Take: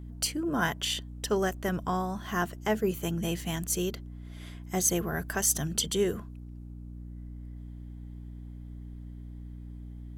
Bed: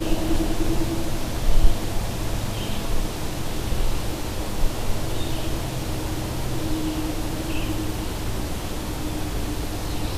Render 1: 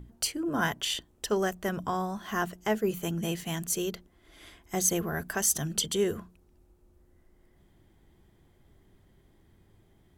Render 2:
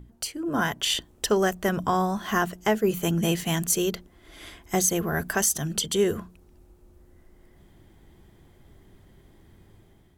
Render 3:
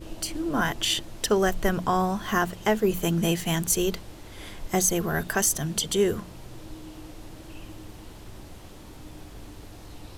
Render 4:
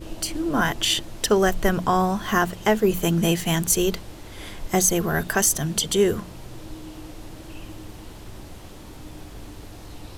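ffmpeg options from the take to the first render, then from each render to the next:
-af "bandreject=f=60:t=h:w=6,bandreject=f=120:t=h:w=6,bandreject=f=180:t=h:w=6,bandreject=f=240:t=h:w=6,bandreject=f=300:t=h:w=6"
-af "alimiter=limit=-19.5dB:level=0:latency=1:release=412,dynaudnorm=f=220:g=5:m=7.5dB"
-filter_complex "[1:a]volume=-16.5dB[a];[0:a][a]amix=inputs=2:normalize=0"
-af "volume=3.5dB"

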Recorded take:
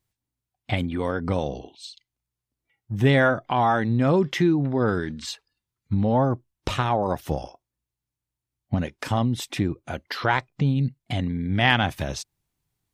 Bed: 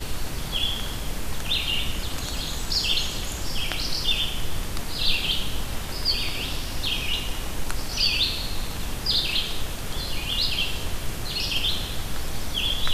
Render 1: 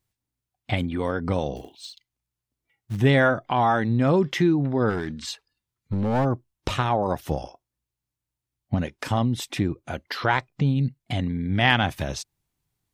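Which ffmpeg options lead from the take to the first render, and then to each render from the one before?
-filter_complex "[0:a]asettb=1/sr,asplit=3[a][b][c];[a]atrim=end=1.564[d];[b]atrim=start=1.56:end=2.97,asetpts=PTS-STARTPTS,afade=t=in:d=0.004:c=qsin,afade=t=out:st=1.406:d=0.004:c=qsin,acrusher=bits=5:mode=log:mix=0:aa=0.000001[e];[c]atrim=start=2.966[f];[d][e]acrossfade=d=0.004:c1=hsin:c2=qsin[g];[g][f]acrossfade=d=0.004:c1=qsin:c2=hsin,asplit=3[h][i][j];[h]afade=t=out:st=4.89:d=0.02[k];[i]aeval=exprs='clip(val(0),-1,0.0841)':c=same,afade=t=in:st=4.89:d=0.02,afade=t=out:st=6.24:d=0.02[l];[j]afade=t=in:st=6.24:d=0.02[m];[k][l][m]amix=inputs=3:normalize=0"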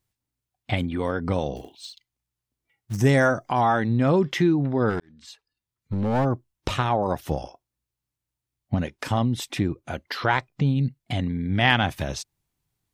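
-filter_complex "[0:a]asettb=1/sr,asplit=3[a][b][c];[a]atrim=end=2.934[d];[b]atrim=start=2.93:end=3.61,asetpts=PTS-STARTPTS,afade=t=in:d=0.004:c=qsin,afade=t=out:st=0.676:d=0.004:c=qsin,highshelf=f=4.5k:t=q:w=3:g=8.5[e];[c]atrim=start=3.606[f];[d][e]acrossfade=d=0.004:c1=hsin:c2=qsin[g];[g][f]acrossfade=d=0.004:c1=qsin:c2=hsin,asplit=2[h][i];[h]atrim=end=5,asetpts=PTS-STARTPTS,afade=t=out:st=4.996:d=0.004:c=hsin[j];[i]atrim=start=5,asetpts=PTS-STARTPTS,afade=t=in:d=1.06[k];[j][k]concat=n=2:v=0:a=1"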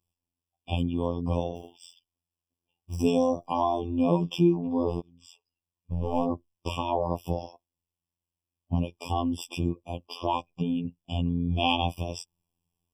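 -af "afftfilt=real='hypot(re,im)*cos(PI*b)':imag='0':win_size=2048:overlap=0.75,afftfilt=real='re*eq(mod(floor(b*sr/1024/1200),2),0)':imag='im*eq(mod(floor(b*sr/1024/1200),2),0)':win_size=1024:overlap=0.75"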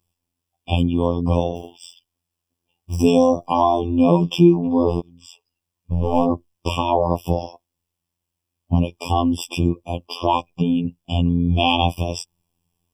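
-af "volume=9dB,alimiter=limit=-2dB:level=0:latency=1"

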